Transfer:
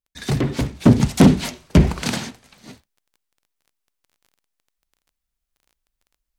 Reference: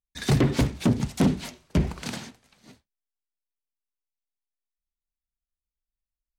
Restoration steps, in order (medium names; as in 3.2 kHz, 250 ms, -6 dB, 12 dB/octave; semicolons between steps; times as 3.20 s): de-click; gain correction -10 dB, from 0.86 s